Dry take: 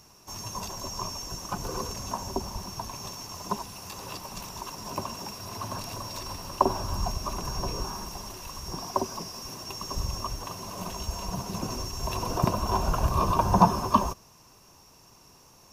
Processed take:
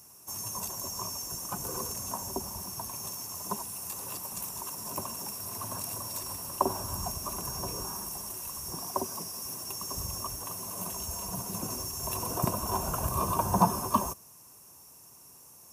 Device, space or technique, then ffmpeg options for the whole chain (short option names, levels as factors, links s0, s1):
budget condenser microphone: -af "highpass=72,highshelf=f=6600:t=q:w=1.5:g=13.5,volume=0.596"